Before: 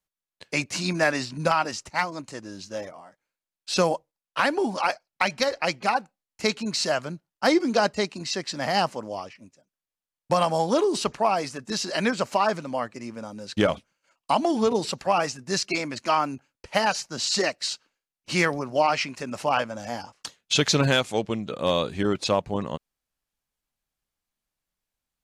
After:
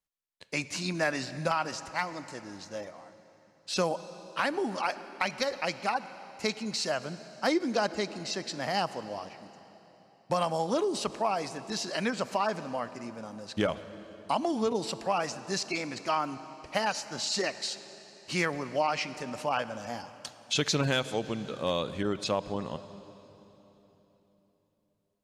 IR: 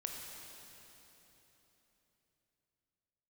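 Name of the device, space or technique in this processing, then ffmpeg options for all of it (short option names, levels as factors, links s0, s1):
ducked reverb: -filter_complex "[0:a]asplit=3[s0][s1][s2];[1:a]atrim=start_sample=2205[s3];[s1][s3]afir=irnorm=-1:irlink=0[s4];[s2]apad=whole_len=1112942[s5];[s4][s5]sidechaincompress=threshold=0.0447:ratio=8:attack=32:release=102,volume=0.422[s6];[s0][s6]amix=inputs=2:normalize=0,volume=0.422"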